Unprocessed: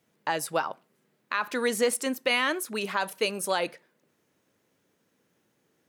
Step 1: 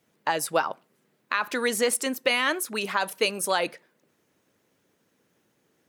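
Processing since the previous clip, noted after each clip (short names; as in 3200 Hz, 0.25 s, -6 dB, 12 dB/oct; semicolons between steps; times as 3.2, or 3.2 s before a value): harmonic-percussive split percussive +4 dB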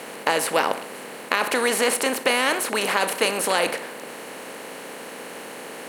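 per-bin compression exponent 0.4; gain -1.5 dB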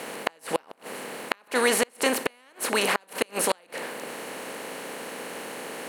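flipped gate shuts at -9 dBFS, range -34 dB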